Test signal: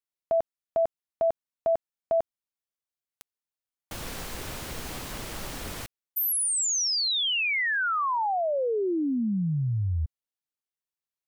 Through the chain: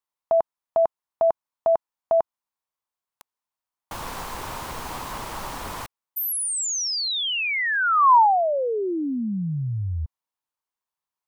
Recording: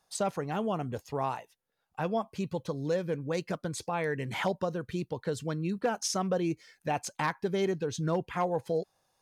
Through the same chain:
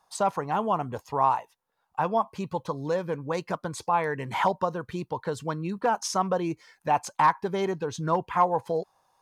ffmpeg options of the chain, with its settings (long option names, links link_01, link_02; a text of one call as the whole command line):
ffmpeg -i in.wav -af "equalizer=frequency=980:width=1.7:gain=13.5" out.wav